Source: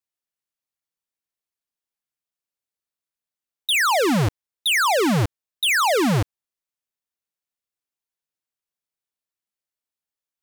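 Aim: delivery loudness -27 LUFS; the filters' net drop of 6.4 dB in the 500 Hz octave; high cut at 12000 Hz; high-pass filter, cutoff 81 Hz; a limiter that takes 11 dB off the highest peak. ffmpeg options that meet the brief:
-af "highpass=81,lowpass=12k,equalizer=f=500:t=o:g=-8.5,volume=1dB,alimiter=limit=-21dB:level=0:latency=1"

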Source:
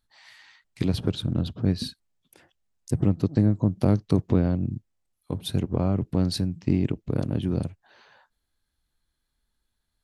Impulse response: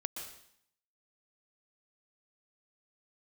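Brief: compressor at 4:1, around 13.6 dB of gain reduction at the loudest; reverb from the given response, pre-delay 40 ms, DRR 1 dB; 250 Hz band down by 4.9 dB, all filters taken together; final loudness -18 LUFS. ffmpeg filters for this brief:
-filter_complex "[0:a]equalizer=f=250:t=o:g=-7,acompressor=threshold=-35dB:ratio=4,asplit=2[a][b];[1:a]atrim=start_sample=2205,adelay=40[c];[b][c]afir=irnorm=-1:irlink=0,volume=-1dB[d];[a][d]amix=inputs=2:normalize=0,volume=19dB"

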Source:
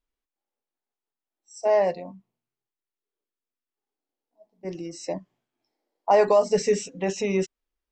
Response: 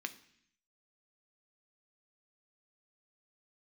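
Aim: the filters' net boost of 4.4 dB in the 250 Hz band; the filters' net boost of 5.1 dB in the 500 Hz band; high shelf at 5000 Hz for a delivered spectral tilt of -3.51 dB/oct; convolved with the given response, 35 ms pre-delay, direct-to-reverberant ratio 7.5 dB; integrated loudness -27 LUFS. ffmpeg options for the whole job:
-filter_complex "[0:a]equalizer=f=250:t=o:g=5,equalizer=f=500:t=o:g=5.5,highshelf=f=5k:g=-8,asplit=2[a][b];[1:a]atrim=start_sample=2205,adelay=35[c];[b][c]afir=irnorm=-1:irlink=0,volume=-7.5dB[d];[a][d]amix=inputs=2:normalize=0,volume=-7.5dB"

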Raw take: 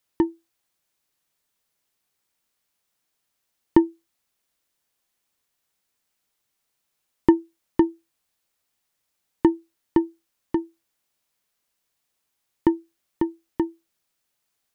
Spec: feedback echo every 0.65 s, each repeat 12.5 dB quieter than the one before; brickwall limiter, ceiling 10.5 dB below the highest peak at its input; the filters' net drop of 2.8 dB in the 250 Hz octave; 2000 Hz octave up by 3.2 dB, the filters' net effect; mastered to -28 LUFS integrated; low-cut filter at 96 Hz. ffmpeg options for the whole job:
-af "highpass=96,equalizer=f=250:t=o:g=-4.5,equalizer=f=2k:t=o:g=3.5,alimiter=limit=-14dB:level=0:latency=1,aecho=1:1:650|1300|1950:0.237|0.0569|0.0137,volume=6dB"

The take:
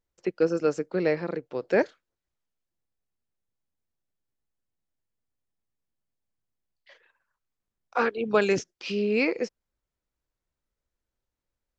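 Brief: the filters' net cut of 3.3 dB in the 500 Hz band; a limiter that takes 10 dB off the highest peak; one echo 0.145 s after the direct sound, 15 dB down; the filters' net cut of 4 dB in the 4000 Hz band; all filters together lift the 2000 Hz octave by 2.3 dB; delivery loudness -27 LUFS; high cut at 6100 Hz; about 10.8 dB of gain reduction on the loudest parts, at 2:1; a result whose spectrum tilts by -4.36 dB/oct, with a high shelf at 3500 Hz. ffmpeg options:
-af "lowpass=6.1k,equalizer=f=500:t=o:g=-4,equalizer=f=2k:t=o:g=5.5,highshelf=f=3.5k:g=-3,equalizer=f=4k:t=o:g=-5,acompressor=threshold=-38dB:ratio=2,alimiter=level_in=5dB:limit=-24dB:level=0:latency=1,volume=-5dB,aecho=1:1:145:0.178,volume=13.5dB"

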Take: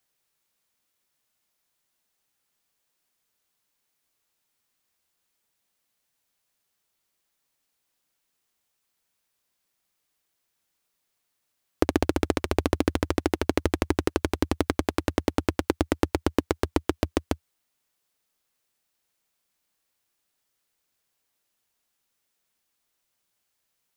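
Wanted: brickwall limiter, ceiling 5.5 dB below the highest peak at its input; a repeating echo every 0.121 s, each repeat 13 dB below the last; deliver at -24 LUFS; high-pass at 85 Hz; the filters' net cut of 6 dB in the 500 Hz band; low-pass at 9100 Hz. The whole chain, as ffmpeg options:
-af "highpass=85,lowpass=9.1k,equalizer=f=500:t=o:g=-8.5,alimiter=limit=-10.5dB:level=0:latency=1,aecho=1:1:121|242|363:0.224|0.0493|0.0108,volume=10dB"

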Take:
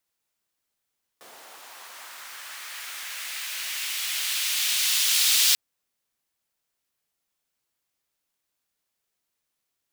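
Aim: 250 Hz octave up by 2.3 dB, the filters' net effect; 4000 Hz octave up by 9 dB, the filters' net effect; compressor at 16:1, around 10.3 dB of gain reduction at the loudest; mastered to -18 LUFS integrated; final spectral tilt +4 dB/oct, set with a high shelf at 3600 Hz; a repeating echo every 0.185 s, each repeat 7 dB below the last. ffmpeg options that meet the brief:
-af "equalizer=f=250:t=o:g=3,highshelf=f=3.6k:g=6,equalizer=f=4k:t=o:g=7,acompressor=threshold=-19dB:ratio=16,aecho=1:1:185|370|555|740|925:0.447|0.201|0.0905|0.0407|0.0183,volume=3.5dB"

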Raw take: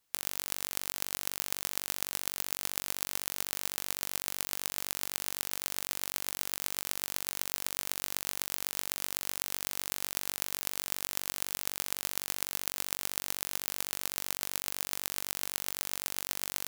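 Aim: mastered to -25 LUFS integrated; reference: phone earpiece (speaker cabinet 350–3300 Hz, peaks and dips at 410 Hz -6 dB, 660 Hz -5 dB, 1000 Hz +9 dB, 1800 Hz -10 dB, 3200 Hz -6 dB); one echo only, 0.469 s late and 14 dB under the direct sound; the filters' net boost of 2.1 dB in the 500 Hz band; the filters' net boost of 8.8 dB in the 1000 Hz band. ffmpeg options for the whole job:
-af "highpass=350,equalizer=f=410:t=q:w=4:g=-6,equalizer=f=660:t=q:w=4:g=-5,equalizer=f=1k:t=q:w=4:g=9,equalizer=f=1.8k:t=q:w=4:g=-10,equalizer=f=3.2k:t=q:w=4:g=-6,lowpass=f=3.3k:w=0.5412,lowpass=f=3.3k:w=1.3066,equalizer=f=500:t=o:g=6.5,equalizer=f=1k:t=o:g=4.5,aecho=1:1:469:0.2,volume=16.5dB"

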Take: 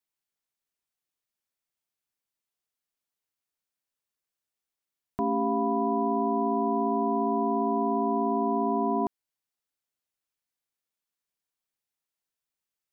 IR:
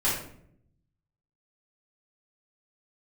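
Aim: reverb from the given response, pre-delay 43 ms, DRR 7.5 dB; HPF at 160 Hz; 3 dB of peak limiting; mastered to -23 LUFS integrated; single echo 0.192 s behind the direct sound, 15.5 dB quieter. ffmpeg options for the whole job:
-filter_complex "[0:a]highpass=160,alimiter=limit=-19.5dB:level=0:latency=1,aecho=1:1:192:0.168,asplit=2[a][b];[1:a]atrim=start_sample=2205,adelay=43[c];[b][c]afir=irnorm=-1:irlink=0,volume=-18.5dB[d];[a][d]amix=inputs=2:normalize=0,volume=4dB"

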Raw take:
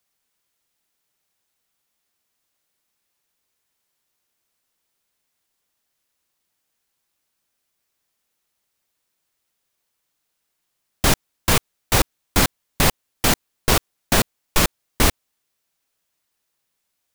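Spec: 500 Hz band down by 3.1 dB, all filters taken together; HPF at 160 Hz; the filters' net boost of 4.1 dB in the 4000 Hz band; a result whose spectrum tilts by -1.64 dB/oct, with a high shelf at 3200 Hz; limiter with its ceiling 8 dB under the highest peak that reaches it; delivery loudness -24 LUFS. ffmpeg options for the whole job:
-af "highpass=160,equalizer=f=500:t=o:g=-4,highshelf=f=3.2k:g=3,equalizer=f=4k:t=o:g=3,volume=-0.5dB,alimiter=limit=-10.5dB:level=0:latency=1"

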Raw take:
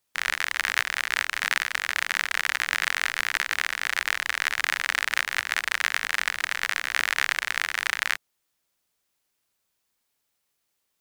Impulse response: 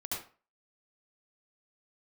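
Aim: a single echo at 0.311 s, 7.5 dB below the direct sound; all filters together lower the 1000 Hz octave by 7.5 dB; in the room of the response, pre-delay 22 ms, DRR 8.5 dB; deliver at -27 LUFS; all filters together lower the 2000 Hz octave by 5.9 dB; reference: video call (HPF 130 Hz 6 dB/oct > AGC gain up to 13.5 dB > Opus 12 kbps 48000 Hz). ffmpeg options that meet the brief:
-filter_complex "[0:a]equalizer=f=1k:t=o:g=-8.5,equalizer=f=2k:t=o:g=-4.5,aecho=1:1:311:0.422,asplit=2[a][b];[1:a]atrim=start_sample=2205,adelay=22[c];[b][c]afir=irnorm=-1:irlink=0,volume=-10.5dB[d];[a][d]amix=inputs=2:normalize=0,highpass=f=130:p=1,dynaudnorm=m=13.5dB,volume=3dB" -ar 48000 -c:a libopus -b:a 12k

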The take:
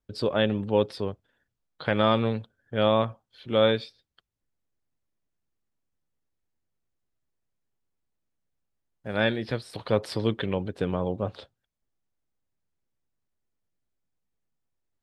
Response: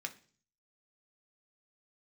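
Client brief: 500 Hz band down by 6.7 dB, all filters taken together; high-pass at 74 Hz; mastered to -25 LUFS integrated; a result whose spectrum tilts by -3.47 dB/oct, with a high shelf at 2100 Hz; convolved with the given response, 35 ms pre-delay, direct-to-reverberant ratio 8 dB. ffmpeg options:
-filter_complex "[0:a]highpass=74,equalizer=f=500:t=o:g=-8,highshelf=f=2.1k:g=4,asplit=2[a][b];[1:a]atrim=start_sample=2205,adelay=35[c];[b][c]afir=irnorm=-1:irlink=0,volume=-7.5dB[d];[a][d]amix=inputs=2:normalize=0,volume=4dB"

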